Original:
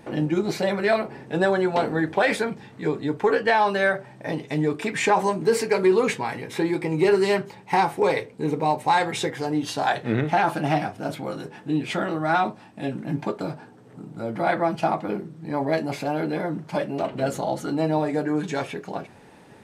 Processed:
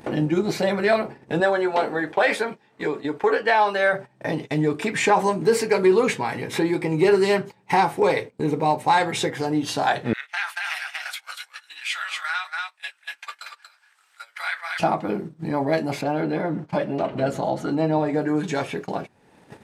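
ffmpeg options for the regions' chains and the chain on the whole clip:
ffmpeg -i in.wav -filter_complex "[0:a]asettb=1/sr,asplit=3[link_01][link_02][link_03];[link_01]atrim=end=1.404[link_04];[link_02]atrim=start=1.4:end=3.93,asetpts=PTS-STARTPTS,afade=type=in:duration=0.004:curve=qsin,afade=type=out:start_time=2.526:duration=0.004:curve=qsin,bass=frequency=250:gain=-14,treble=frequency=4000:gain=-3,asplit=2[link_05][link_06];[link_06]adelay=14,volume=-12dB[link_07];[link_05][link_07]amix=inputs=2:normalize=0,atrim=end_sample=111573[link_08];[link_03]atrim=start=3.926[link_09];[link_04][link_08]acrossfade=duration=0.004:curve1=hsin:curve2=qsin[link_10];[link_10][link_09]acrossfade=duration=0.004:curve1=qsin:curve2=hsin,asettb=1/sr,asplit=3[link_11][link_12][link_13];[link_11]atrim=end=10.134[link_14];[link_12]atrim=start=10.13:end=14.8,asetpts=PTS-STARTPTS,afade=type=in:duration=0.004:curve=qsin,afade=type=out:start_time=4.666:duration=0.004:curve=qsin,highpass=frequency=1500:width=0.5412,highpass=frequency=1500:width=1.3066,aecho=1:1:235:0.562,atrim=end_sample=205947[link_15];[link_13]atrim=start=14.796[link_16];[link_14][link_15]acrossfade=duration=0.004:curve1=hsin:curve2=qsin[link_17];[link_17][link_16]acrossfade=duration=0.004:curve1=qsin:curve2=hsin,asettb=1/sr,asplit=3[link_18][link_19][link_20];[link_18]atrim=end=16.014[link_21];[link_19]atrim=start=16.01:end=18.22,asetpts=PTS-STARTPTS,afade=type=in:duration=0.004:curve=qsin,afade=type=out:start_time=2.206:duration=0.004:curve=qsin,highshelf=frequency=6300:gain=-12,aecho=1:1:125:0.0794,atrim=end_sample=97461[link_22];[link_20]atrim=start=18.216[link_23];[link_21][link_22]acrossfade=duration=0.004:curve1=hsin:curve2=qsin[link_24];[link_24][link_23]acrossfade=duration=0.004:curve1=qsin:curve2=hsin,acompressor=mode=upward:threshold=-23dB:ratio=2.5,agate=range=-20dB:threshold=-33dB:ratio=16:detection=peak,volume=1.5dB" out.wav

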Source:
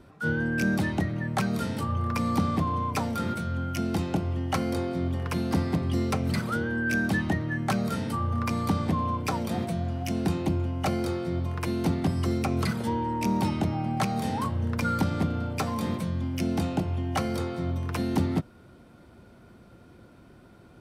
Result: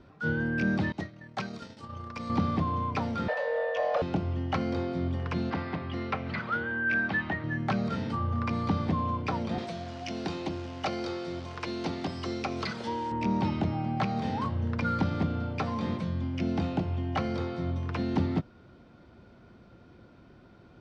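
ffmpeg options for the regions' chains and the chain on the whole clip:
ffmpeg -i in.wav -filter_complex "[0:a]asettb=1/sr,asplit=3[link_01][link_02][link_03];[link_01]atrim=end=0.924[link_04];[link_02]atrim=start=0.92:end=2.3,asetpts=PTS-STARTPTS,afade=type=in:duration=0.004:curve=qsin,afade=type=out:start_time=1.376:duration=0.004:curve=qsin,agate=range=-33dB:threshold=-22dB:ratio=3:release=100:detection=peak,bass=frequency=250:gain=-6,treble=frequency=4000:gain=11[link_05];[link_03]atrim=start=2.296[link_06];[link_04][link_05]acrossfade=duration=0.004:curve1=hsin:curve2=qsin[link_07];[link_07][link_06]acrossfade=duration=0.004:curve1=qsin:curve2=hsin,asettb=1/sr,asplit=3[link_08][link_09][link_10];[link_08]atrim=end=3.284[link_11];[link_09]atrim=start=3.28:end=4.02,asetpts=PTS-STARTPTS,afade=type=in:duration=0.004:curve=qsin,afade=type=out:start_time=0.736:duration=0.004:curve=qsin,afreqshift=380,asplit=2[link_12][link_13];[link_13]highpass=frequency=720:poles=1,volume=12dB,asoftclip=type=tanh:threshold=-15.5dB[link_14];[link_12][link_14]amix=inputs=2:normalize=0,lowpass=frequency=1600:poles=1,volume=-6dB[link_15];[link_10]atrim=start=4.016[link_16];[link_11][link_15]acrossfade=duration=0.004:curve1=hsin:curve2=qsin[link_17];[link_17][link_16]acrossfade=duration=0.004:curve1=qsin:curve2=hsin,asettb=1/sr,asplit=3[link_18][link_19][link_20];[link_18]atrim=end=5.504[link_21];[link_19]atrim=start=5.5:end=7.44,asetpts=PTS-STARTPTS,afade=type=in:duration=0.004:curve=qsin,afade=type=out:start_time=1.936:duration=0.004:curve=qsin,lowpass=2200,tiltshelf=frequency=740:gain=-8[link_22];[link_20]atrim=start=7.436[link_23];[link_21][link_22]acrossfade=duration=0.004:curve1=hsin:curve2=qsin[link_24];[link_24][link_23]acrossfade=duration=0.004:curve1=qsin:curve2=hsin,asettb=1/sr,asplit=3[link_25][link_26][link_27];[link_25]atrim=end=9.584[link_28];[link_26]atrim=start=9.58:end=13.12,asetpts=PTS-STARTPTS,afade=type=in:duration=0.004:curve=qsin,afade=type=out:start_time=3.536:duration=0.004:curve=qsin,bass=frequency=250:gain=-11,treble=frequency=4000:gain=13,acrusher=bits=8:dc=4:mix=0:aa=0.000001[link_29];[link_27]atrim=start=13.116[link_30];[link_28][link_29]acrossfade=duration=0.004:curve1=hsin:curve2=qsin[link_31];[link_31][link_30]acrossfade=duration=0.004:curve1=qsin:curve2=hsin,lowpass=frequency=5700:width=0.5412,lowpass=frequency=5700:width=1.3066,acrossover=split=4500[link_32][link_33];[link_33]acompressor=threshold=-55dB:ratio=4:attack=1:release=60[link_34];[link_32][link_34]amix=inputs=2:normalize=0,volume=-2dB" out.wav

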